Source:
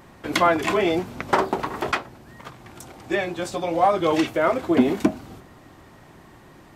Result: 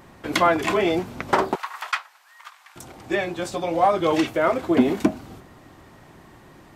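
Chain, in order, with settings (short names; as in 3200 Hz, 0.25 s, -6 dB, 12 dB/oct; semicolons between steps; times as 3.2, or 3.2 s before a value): 1.55–2.76 HPF 1000 Hz 24 dB/oct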